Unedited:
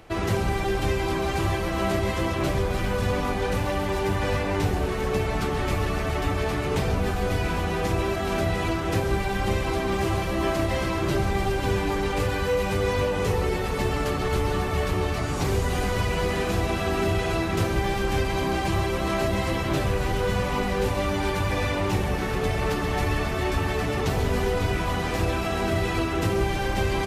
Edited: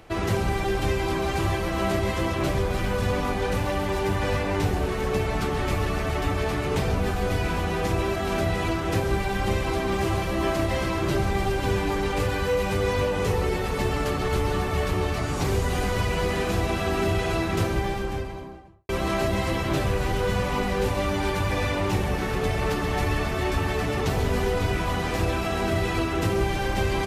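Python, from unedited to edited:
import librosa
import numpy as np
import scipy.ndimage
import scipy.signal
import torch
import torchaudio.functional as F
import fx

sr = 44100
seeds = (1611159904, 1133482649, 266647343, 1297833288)

y = fx.studio_fade_out(x, sr, start_s=17.53, length_s=1.36)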